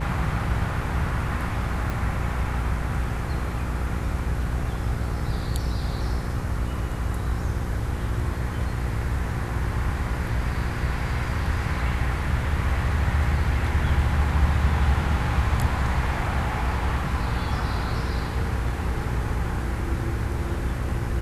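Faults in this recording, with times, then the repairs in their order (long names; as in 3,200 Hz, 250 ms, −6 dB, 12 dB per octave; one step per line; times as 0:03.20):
mains buzz 60 Hz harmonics 9 −29 dBFS
0:01.90: click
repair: click removal
hum removal 60 Hz, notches 9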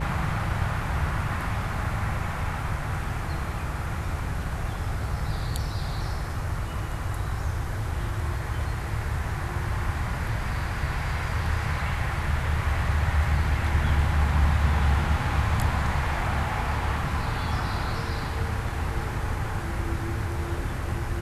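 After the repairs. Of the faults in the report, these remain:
0:01.90: click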